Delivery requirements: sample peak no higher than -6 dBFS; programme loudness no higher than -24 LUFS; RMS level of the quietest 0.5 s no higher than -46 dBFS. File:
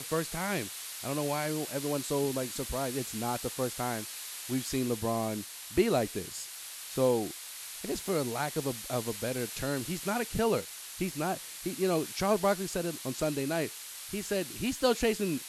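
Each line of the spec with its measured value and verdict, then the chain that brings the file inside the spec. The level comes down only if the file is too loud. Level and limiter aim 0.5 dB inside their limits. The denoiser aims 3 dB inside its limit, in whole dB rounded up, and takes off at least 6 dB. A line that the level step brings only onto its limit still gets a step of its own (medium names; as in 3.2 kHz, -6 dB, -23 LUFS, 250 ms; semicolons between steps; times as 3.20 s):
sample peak -12.5 dBFS: pass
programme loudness -32.5 LUFS: pass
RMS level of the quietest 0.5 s -44 dBFS: fail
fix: noise reduction 6 dB, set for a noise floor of -44 dBFS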